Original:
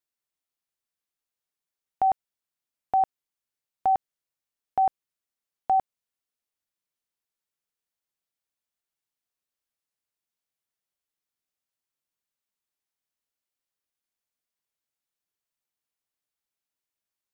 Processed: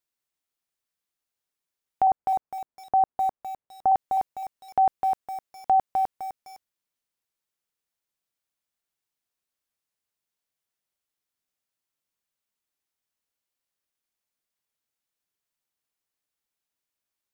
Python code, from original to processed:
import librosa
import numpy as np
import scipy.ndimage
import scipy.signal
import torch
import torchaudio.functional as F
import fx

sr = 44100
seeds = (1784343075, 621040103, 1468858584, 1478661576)

y = fx.lowpass(x, sr, hz=1200.0, slope=12, at=(2.07, 3.92))
y = fx.echo_crushed(y, sr, ms=255, feedback_pct=35, bits=8, wet_db=-4.0)
y = y * 10.0 ** (2.0 / 20.0)